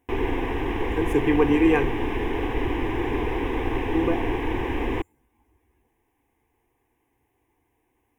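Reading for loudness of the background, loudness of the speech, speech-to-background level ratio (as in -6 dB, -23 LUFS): -27.5 LUFS, -24.0 LUFS, 3.5 dB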